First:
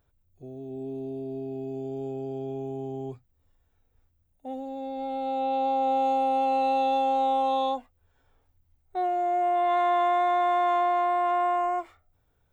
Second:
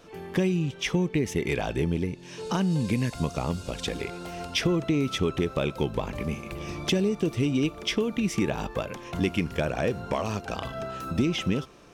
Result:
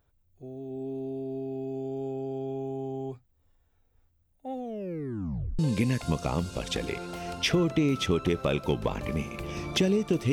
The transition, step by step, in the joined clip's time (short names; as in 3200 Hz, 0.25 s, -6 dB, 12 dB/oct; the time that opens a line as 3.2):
first
4.54 tape stop 1.05 s
5.59 switch to second from 2.71 s